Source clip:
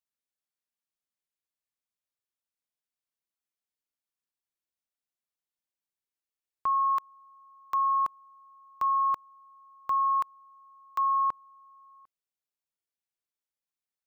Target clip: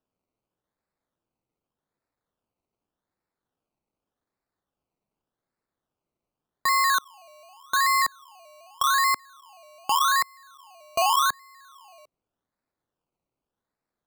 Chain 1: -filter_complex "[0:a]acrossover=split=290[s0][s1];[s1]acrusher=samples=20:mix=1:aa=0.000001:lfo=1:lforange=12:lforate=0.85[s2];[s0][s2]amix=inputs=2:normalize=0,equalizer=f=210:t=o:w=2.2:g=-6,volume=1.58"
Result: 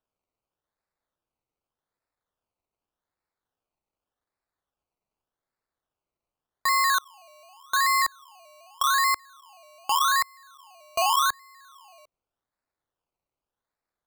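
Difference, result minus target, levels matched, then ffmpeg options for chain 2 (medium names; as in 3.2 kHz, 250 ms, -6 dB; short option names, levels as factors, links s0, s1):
250 Hz band -7.0 dB
-filter_complex "[0:a]acrossover=split=290[s0][s1];[s1]acrusher=samples=20:mix=1:aa=0.000001:lfo=1:lforange=12:lforate=0.85[s2];[s0][s2]amix=inputs=2:normalize=0,equalizer=f=210:t=o:w=2.2:g=2.5,volume=1.58"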